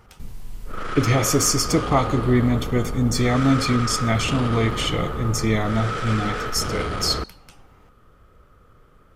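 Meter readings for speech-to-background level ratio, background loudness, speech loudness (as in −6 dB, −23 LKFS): 6.5 dB, −28.5 LKFS, −22.0 LKFS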